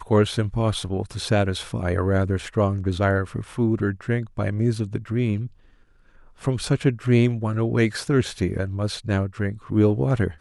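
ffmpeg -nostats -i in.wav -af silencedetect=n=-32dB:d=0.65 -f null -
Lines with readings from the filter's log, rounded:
silence_start: 5.47
silence_end: 6.43 | silence_duration: 0.96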